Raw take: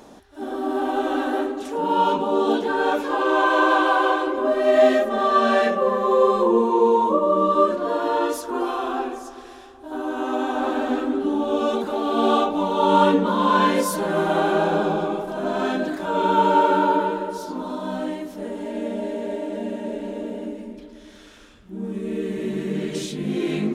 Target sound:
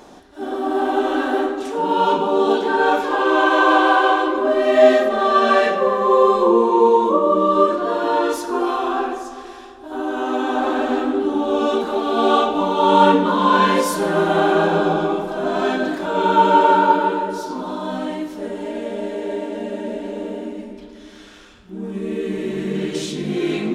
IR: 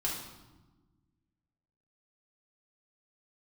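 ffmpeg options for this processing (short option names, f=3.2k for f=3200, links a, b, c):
-filter_complex "[0:a]asplit=2[a][b];[b]lowshelf=f=280:g=-11[c];[1:a]atrim=start_sample=2205,lowpass=8.8k[d];[c][d]afir=irnorm=-1:irlink=0,volume=-5dB[e];[a][e]amix=inputs=2:normalize=0"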